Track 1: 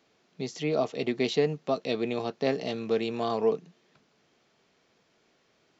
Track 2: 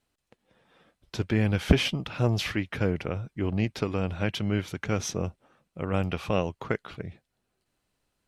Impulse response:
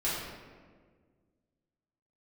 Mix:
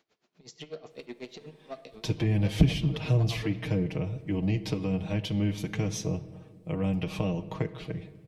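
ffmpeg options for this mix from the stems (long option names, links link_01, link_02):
-filter_complex "[0:a]alimiter=limit=-23.5dB:level=0:latency=1:release=497,asoftclip=type=tanh:threshold=-27.5dB,aeval=exprs='val(0)*pow(10,-26*(0.5-0.5*cos(2*PI*8.1*n/s))/20)':channel_layout=same,volume=-1.5dB,asplit=2[link_01][link_02];[link_02]volume=-19.5dB[link_03];[1:a]equalizer=frequency=1400:width=3:gain=-13,aecho=1:1:6.4:0.85,acrossover=split=260[link_04][link_05];[link_05]acompressor=threshold=-36dB:ratio=5[link_06];[link_04][link_06]amix=inputs=2:normalize=0,adelay=900,volume=1.5dB,asplit=2[link_07][link_08];[link_08]volume=-19dB[link_09];[2:a]atrim=start_sample=2205[link_10];[link_03][link_09]amix=inputs=2:normalize=0[link_11];[link_11][link_10]afir=irnorm=-1:irlink=0[link_12];[link_01][link_07][link_12]amix=inputs=3:normalize=0,equalizer=frequency=230:width=0.83:gain=-3"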